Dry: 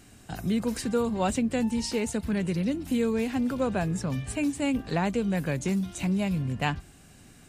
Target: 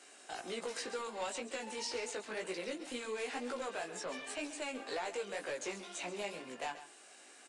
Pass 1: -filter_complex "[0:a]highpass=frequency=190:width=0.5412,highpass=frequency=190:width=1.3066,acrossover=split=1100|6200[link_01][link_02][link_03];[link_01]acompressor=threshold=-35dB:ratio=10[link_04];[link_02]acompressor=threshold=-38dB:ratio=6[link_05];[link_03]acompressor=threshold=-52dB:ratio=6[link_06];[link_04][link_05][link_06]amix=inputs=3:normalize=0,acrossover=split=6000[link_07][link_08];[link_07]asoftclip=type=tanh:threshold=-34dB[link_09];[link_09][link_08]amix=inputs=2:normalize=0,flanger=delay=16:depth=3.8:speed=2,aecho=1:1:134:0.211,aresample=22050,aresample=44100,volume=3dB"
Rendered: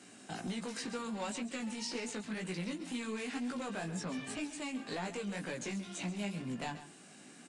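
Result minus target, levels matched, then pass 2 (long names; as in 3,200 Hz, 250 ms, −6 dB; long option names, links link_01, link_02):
250 Hz band +8.0 dB
-filter_complex "[0:a]highpass=frequency=410:width=0.5412,highpass=frequency=410:width=1.3066,acrossover=split=1100|6200[link_01][link_02][link_03];[link_01]acompressor=threshold=-35dB:ratio=10[link_04];[link_02]acompressor=threshold=-38dB:ratio=6[link_05];[link_03]acompressor=threshold=-52dB:ratio=6[link_06];[link_04][link_05][link_06]amix=inputs=3:normalize=0,acrossover=split=6000[link_07][link_08];[link_07]asoftclip=type=tanh:threshold=-34dB[link_09];[link_09][link_08]amix=inputs=2:normalize=0,flanger=delay=16:depth=3.8:speed=2,aecho=1:1:134:0.211,aresample=22050,aresample=44100,volume=3dB"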